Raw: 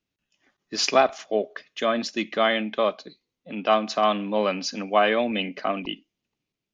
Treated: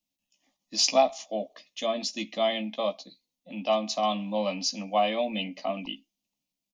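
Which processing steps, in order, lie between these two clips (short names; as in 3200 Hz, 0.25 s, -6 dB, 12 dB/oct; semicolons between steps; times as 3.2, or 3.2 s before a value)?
high shelf 4500 Hz +10.5 dB; fixed phaser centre 400 Hz, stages 6; doubler 15 ms -6.5 dB; gain -4.5 dB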